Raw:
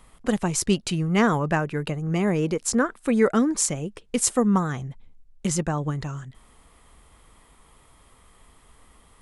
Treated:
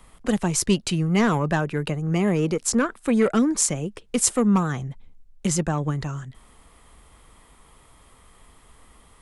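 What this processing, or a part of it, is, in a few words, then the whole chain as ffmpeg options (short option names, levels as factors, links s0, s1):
one-band saturation: -filter_complex "[0:a]acrossover=split=230|2700[s0][s1][s2];[s1]asoftclip=type=tanh:threshold=0.133[s3];[s0][s3][s2]amix=inputs=3:normalize=0,volume=1.26"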